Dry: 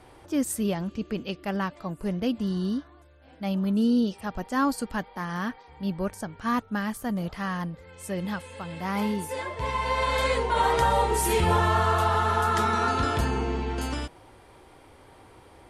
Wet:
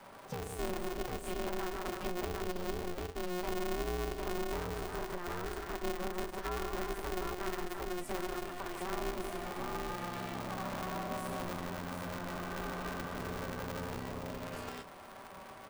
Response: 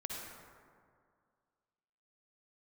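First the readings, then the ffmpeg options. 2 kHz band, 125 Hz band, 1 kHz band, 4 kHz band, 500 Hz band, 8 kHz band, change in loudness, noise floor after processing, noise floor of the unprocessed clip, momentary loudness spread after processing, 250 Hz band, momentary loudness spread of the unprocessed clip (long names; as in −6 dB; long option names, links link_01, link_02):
−10.5 dB, −13.5 dB, −13.5 dB, −9.5 dB, −8.5 dB, −10.5 dB, −12.0 dB, −51 dBFS, −53 dBFS, 4 LU, −13.5 dB, 11 LU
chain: -filter_complex "[0:a]aecho=1:1:42|46|101|150|324|752:0.282|0.299|0.251|0.422|0.299|0.668,flanger=delay=9.9:depth=1.5:regen=76:speed=0.18:shape=triangular,aeval=exprs='(tanh(20*val(0)+0.55)-tanh(0.55))/20':channel_layout=same,acrossover=split=370[link_01][link_02];[link_02]acompressor=threshold=-47dB:ratio=4[link_03];[link_01][link_03]amix=inputs=2:normalize=0,equalizer=frequency=970:width=0.95:gain=7.5,acompressor=threshold=-37dB:ratio=2.5,lowshelf=frequency=130:gain=-6,aecho=1:1:5.1:0.49,aeval=exprs='val(0)*sgn(sin(2*PI*180*n/s))':channel_layout=same,volume=1dB"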